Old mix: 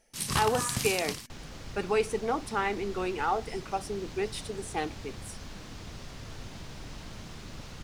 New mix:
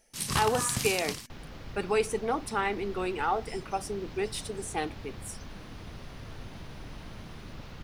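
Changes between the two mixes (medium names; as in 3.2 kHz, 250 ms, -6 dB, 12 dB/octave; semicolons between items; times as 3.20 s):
speech: add treble shelf 6.2 kHz +5.5 dB; second sound: add peaking EQ 7.7 kHz -12 dB 1.2 oct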